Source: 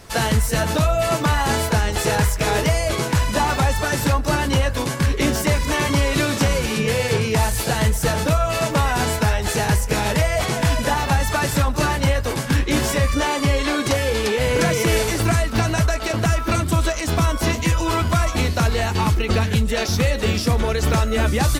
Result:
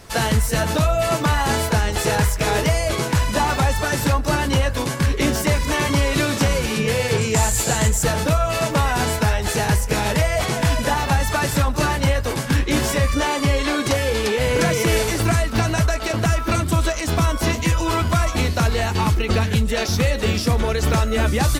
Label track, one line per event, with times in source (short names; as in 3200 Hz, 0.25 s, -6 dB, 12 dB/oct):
7.180000	8.030000	bell 7300 Hz +14 dB 0.25 oct